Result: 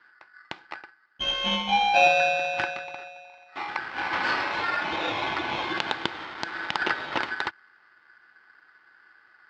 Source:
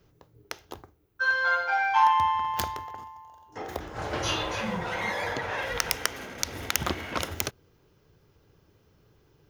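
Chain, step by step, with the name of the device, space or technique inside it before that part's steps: ring modulator pedal into a guitar cabinet (polarity switched at an audio rate 1600 Hz; speaker cabinet 100–4100 Hz, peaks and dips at 340 Hz +8 dB, 860 Hz +10 dB, 1500 Hz +8 dB)

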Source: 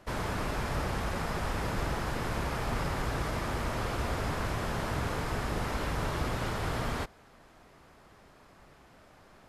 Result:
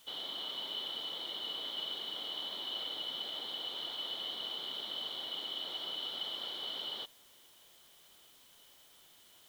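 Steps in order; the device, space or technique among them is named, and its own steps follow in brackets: split-band scrambled radio (four-band scrambler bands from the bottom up 2413; BPF 360–3000 Hz; white noise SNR 21 dB); gain -5 dB

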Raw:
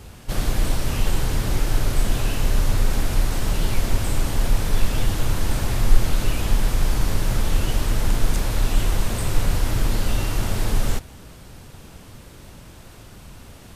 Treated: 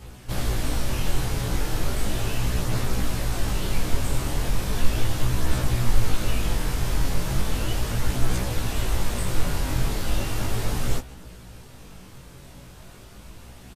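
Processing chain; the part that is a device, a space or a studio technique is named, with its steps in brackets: double-tracked vocal (doubler 16 ms -5.5 dB; chorus 0.36 Hz, delay 16 ms, depth 7.3 ms)

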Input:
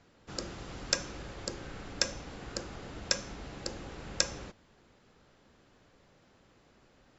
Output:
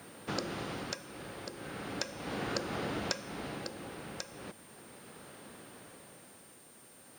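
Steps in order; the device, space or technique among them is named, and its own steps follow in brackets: medium wave at night (BPF 140–4500 Hz; compressor 5:1, threshold -44 dBFS, peak gain reduction 16.5 dB; tremolo 0.37 Hz, depth 66%; whine 9000 Hz -71 dBFS; white noise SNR 21 dB); gain +12.5 dB

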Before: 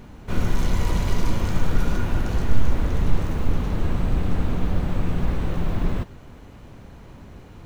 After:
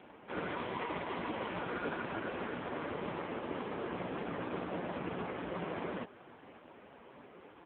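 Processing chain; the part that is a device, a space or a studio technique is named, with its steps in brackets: satellite phone (BPF 370–3400 Hz; echo 0.615 s -23.5 dB; AMR-NB 4.75 kbps 8000 Hz)

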